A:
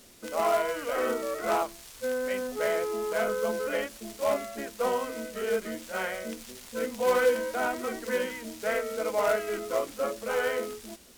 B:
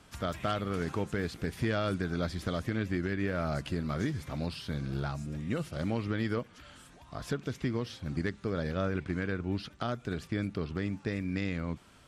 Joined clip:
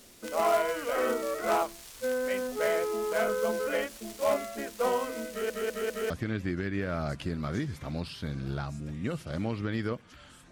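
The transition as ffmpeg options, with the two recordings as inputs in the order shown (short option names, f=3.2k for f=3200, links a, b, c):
-filter_complex "[0:a]apad=whole_dur=10.51,atrim=end=10.51,asplit=4[a][b][c][d];[a]atrim=end=5.502[e];[b]atrim=start=5.298:end=5.502[f];[c]atrim=start=5.298:end=5.502[g];[d]atrim=start=5.298:end=5.502[h];[1:a]atrim=start=2.558:end=6.97[i];[e][f]acrossfade=d=0.004:c1=hsin:c2=hsin[j];[j][g]acrossfade=d=0.004:c1=hsin:c2=hsin[k];[k][h]acrossfade=d=0.004:c1=hsin:c2=hsin[l];[l][i]acrossfade=d=0.004:c1=hsin:c2=hsin"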